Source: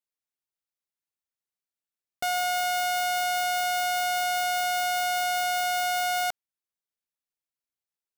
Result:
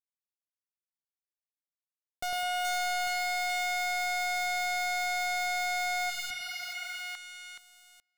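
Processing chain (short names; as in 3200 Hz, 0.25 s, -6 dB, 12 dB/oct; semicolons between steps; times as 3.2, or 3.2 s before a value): pre-emphasis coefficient 0.9; treble ducked by the level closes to 1600 Hz, closed at -27 dBFS; high shelf 9000 Hz -8 dB; on a send: split-band echo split 920 Hz, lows 0.104 s, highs 0.424 s, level -3 dB; on the sum: sample leveller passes 5; spectral repair 6.13–6.97, 320–3300 Hz after; gain -4 dB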